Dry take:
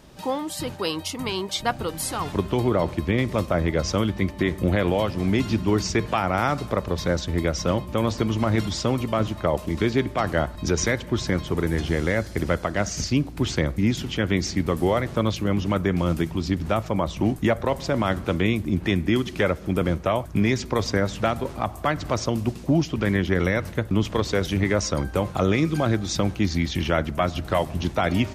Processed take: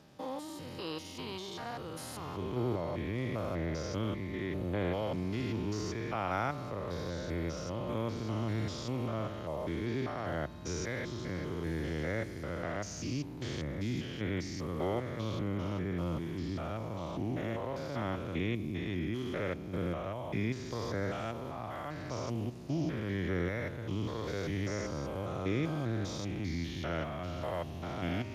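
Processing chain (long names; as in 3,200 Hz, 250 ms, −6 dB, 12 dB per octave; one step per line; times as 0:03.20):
spectrum averaged block by block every 200 ms
dynamic equaliser 200 Hz, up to −4 dB, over −42 dBFS, Q 3.1
level −9 dB
Speex 36 kbit/s 32,000 Hz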